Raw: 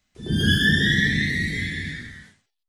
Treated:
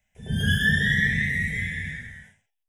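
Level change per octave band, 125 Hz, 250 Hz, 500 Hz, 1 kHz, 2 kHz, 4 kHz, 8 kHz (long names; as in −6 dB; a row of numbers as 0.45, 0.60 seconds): −2.0 dB, −5.5 dB, −8.0 dB, can't be measured, −1.0 dB, −7.5 dB, −4.0 dB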